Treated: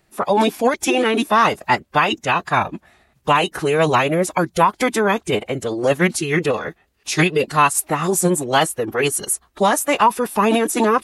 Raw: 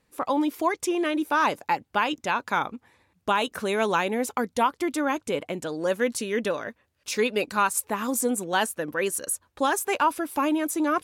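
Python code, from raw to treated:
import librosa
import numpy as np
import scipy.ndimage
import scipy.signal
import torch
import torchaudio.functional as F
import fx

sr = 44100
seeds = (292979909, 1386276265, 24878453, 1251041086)

y = fx.pitch_keep_formants(x, sr, semitones=-5.5)
y = y * librosa.db_to_amplitude(8.5)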